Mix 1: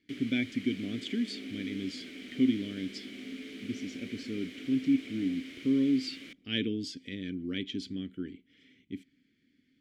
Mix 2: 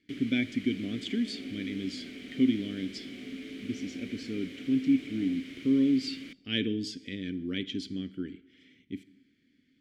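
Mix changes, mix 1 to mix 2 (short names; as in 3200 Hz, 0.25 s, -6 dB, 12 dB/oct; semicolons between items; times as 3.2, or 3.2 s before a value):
speech: send on; first sound: add tone controls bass +8 dB, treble -1 dB; second sound: remove running mean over 31 samples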